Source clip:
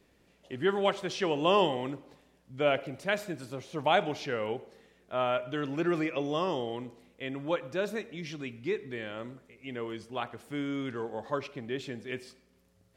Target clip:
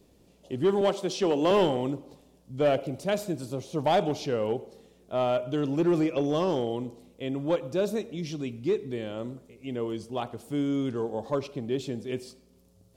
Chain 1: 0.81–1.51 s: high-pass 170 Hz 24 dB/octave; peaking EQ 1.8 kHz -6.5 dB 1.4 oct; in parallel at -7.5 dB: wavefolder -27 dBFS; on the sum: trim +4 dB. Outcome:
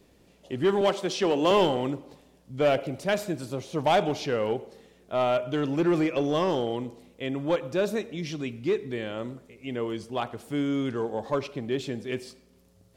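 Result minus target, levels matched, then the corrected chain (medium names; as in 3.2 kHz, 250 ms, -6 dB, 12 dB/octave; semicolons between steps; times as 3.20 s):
2 kHz band +4.5 dB
0.81–1.51 s: high-pass 170 Hz 24 dB/octave; peaking EQ 1.8 kHz -15 dB 1.4 oct; in parallel at -7.5 dB: wavefolder -27 dBFS; on the sum: trim +4 dB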